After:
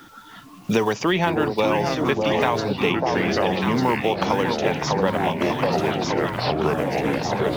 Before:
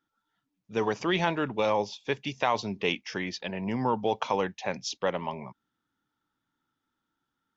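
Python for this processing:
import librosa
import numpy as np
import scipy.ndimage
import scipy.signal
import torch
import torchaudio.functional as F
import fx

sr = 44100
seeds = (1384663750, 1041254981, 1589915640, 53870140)

p1 = fx.block_float(x, sr, bits=7)
p2 = p1 + fx.echo_alternate(p1, sr, ms=598, hz=940.0, feedback_pct=68, wet_db=-4.5, dry=0)
p3 = fx.echo_pitch(p2, sr, ms=311, semitones=-4, count=3, db_per_echo=-6.0)
p4 = fx.band_squash(p3, sr, depth_pct=100)
y = p4 * librosa.db_to_amplitude(5.5)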